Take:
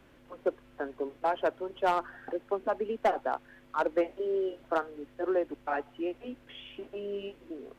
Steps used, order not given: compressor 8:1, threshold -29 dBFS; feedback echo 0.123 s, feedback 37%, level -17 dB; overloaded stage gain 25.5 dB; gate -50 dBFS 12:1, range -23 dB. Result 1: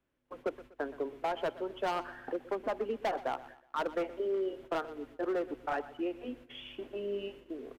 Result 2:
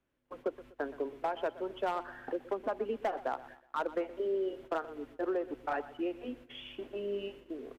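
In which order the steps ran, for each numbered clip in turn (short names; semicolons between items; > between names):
overloaded stage > gate > compressor > feedback echo; gate > compressor > overloaded stage > feedback echo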